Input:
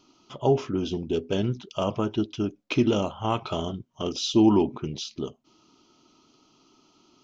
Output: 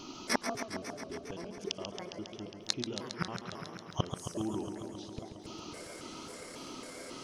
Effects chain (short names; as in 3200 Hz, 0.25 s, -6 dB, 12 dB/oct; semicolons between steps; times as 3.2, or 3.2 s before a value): trilling pitch shifter +9 st, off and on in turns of 0.273 s; flipped gate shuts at -29 dBFS, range -32 dB; warbling echo 0.136 s, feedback 80%, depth 119 cents, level -8 dB; gain +14 dB